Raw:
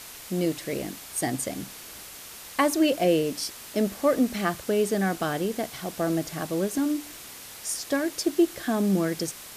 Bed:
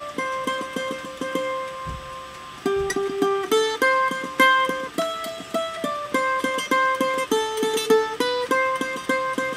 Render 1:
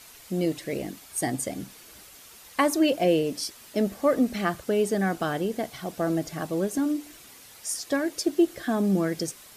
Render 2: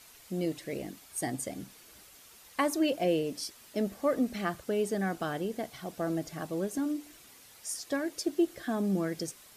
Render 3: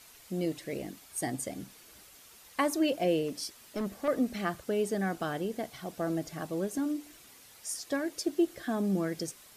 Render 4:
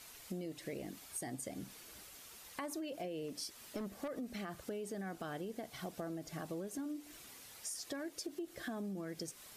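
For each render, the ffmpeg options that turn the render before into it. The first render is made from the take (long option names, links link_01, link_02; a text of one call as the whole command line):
ffmpeg -i in.wav -af "afftdn=noise_reduction=8:noise_floor=-43" out.wav
ffmpeg -i in.wav -af "volume=-6dB" out.wav
ffmpeg -i in.wav -filter_complex "[0:a]asettb=1/sr,asplit=3[link_01][link_02][link_03];[link_01]atrim=end=3.284[link_04];[link_02]atrim=start=3.28:end=4.08,asetpts=PTS-STARTPTS,afade=type=in:duration=0.004:curve=qsin,afade=type=out:start_time=0.796:duration=0.004:curve=qsin,volume=28.5dB,asoftclip=hard,volume=-28.5dB[link_05];[link_03]atrim=start=4.076[link_06];[link_04][link_05]acrossfade=duration=0.004:curve1=hsin:curve2=qsin[link_07];[link_07][link_06]acrossfade=duration=0.004:curve1=qsin:curve2=hsin" out.wav
ffmpeg -i in.wav -af "alimiter=level_in=1.5dB:limit=-24dB:level=0:latency=1:release=49,volume=-1.5dB,acompressor=threshold=-40dB:ratio=6" out.wav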